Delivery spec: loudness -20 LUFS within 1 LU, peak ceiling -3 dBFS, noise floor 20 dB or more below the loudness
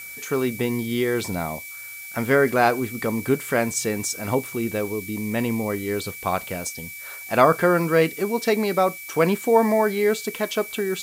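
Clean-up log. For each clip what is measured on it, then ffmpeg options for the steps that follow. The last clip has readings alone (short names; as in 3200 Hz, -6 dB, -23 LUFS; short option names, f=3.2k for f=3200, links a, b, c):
steady tone 2300 Hz; tone level -37 dBFS; noise floor -38 dBFS; noise floor target -43 dBFS; loudness -23.0 LUFS; peak -2.0 dBFS; loudness target -20.0 LUFS
-> -af "bandreject=f=2.3k:w=30"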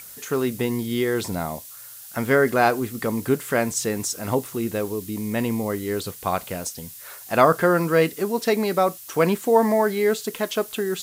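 steady tone none; noise floor -41 dBFS; noise floor target -43 dBFS
-> -af "afftdn=nr=6:nf=-41"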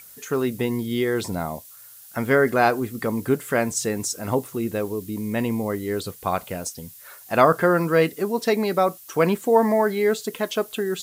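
noise floor -46 dBFS; loudness -23.0 LUFS; peak -2.0 dBFS; loudness target -20.0 LUFS
-> -af "volume=3dB,alimiter=limit=-3dB:level=0:latency=1"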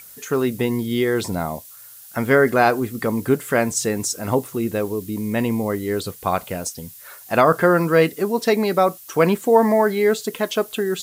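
loudness -20.5 LUFS; peak -3.0 dBFS; noise floor -43 dBFS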